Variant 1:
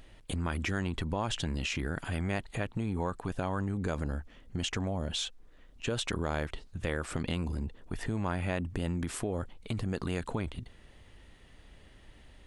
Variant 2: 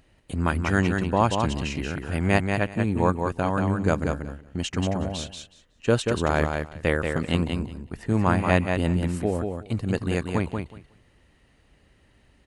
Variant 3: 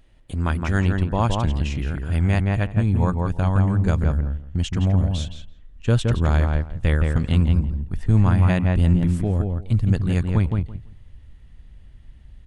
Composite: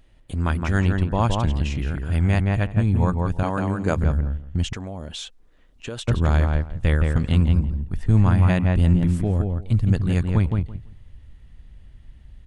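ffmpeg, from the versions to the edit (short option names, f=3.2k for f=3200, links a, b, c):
-filter_complex "[2:a]asplit=3[a][b][c];[a]atrim=end=3.432[d];[1:a]atrim=start=3.428:end=3.962[e];[b]atrim=start=3.958:end=4.732[f];[0:a]atrim=start=4.728:end=6.082[g];[c]atrim=start=6.078[h];[d][e]acrossfade=d=0.004:c1=hsin:c2=hsin[i];[i][f]acrossfade=d=0.004:c1=hsin:c2=hsin[j];[j][g]acrossfade=d=0.004:c1=hsin:c2=hsin[k];[k][h]acrossfade=d=0.004:c1=hsin:c2=hsin"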